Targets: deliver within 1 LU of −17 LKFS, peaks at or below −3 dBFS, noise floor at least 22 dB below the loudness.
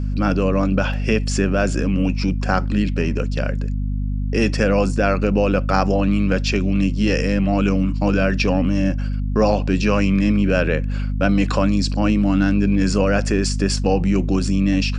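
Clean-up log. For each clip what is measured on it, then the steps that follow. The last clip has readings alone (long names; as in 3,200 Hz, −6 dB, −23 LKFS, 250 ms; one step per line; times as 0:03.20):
mains hum 50 Hz; hum harmonics up to 250 Hz; level of the hum −20 dBFS; integrated loudness −19.5 LKFS; sample peak −3.5 dBFS; target loudness −17.0 LKFS
→ mains-hum notches 50/100/150/200/250 Hz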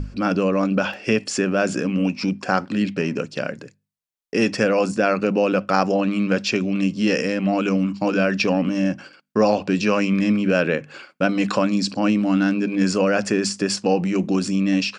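mains hum none found; integrated loudness −21.0 LKFS; sample peak −3.5 dBFS; target loudness −17.0 LKFS
→ level +4 dB
brickwall limiter −3 dBFS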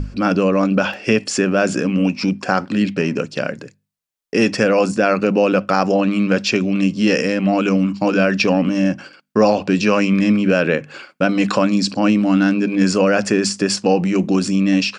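integrated loudness −17.0 LKFS; sample peak −3.0 dBFS; background noise floor −63 dBFS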